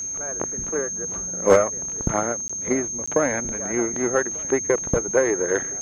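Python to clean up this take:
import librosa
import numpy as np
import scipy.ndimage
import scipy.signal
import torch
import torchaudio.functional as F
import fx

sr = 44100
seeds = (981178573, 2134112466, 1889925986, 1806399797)

y = fx.fix_declip(x, sr, threshold_db=-7.0)
y = fx.notch(y, sr, hz=6400.0, q=30.0)
y = fx.fix_interpolate(y, sr, at_s=(2.48, 3.06), length_ms=15.0)
y = fx.fix_echo_inverse(y, sr, delay_ms=1192, level_db=-23.5)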